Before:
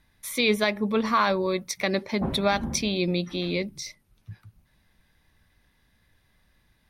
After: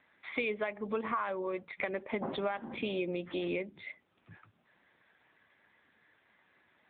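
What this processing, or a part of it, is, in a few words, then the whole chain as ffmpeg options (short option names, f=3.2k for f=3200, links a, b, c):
voicemail: -af "highpass=340,lowpass=2.8k,acompressor=threshold=-36dB:ratio=8,volume=5.5dB" -ar 8000 -c:a libopencore_amrnb -b:a 7950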